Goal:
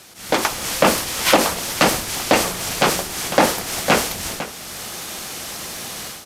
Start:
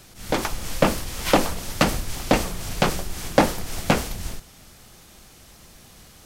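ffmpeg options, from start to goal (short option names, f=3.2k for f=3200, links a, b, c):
-filter_complex "[0:a]highpass=f=410:p=1,dynaudnorm=f=320:g=3:m=14dB,asplit=2[a][b];[b]aecho=0:1:502:0.15[c];[a][c]amix=inputs=2:normalize=0,aresample=32000,aresample=44100,alimiter=level_in=7dB:limit=-1dB:release=50:level=0:latency=1,volume=-1dB"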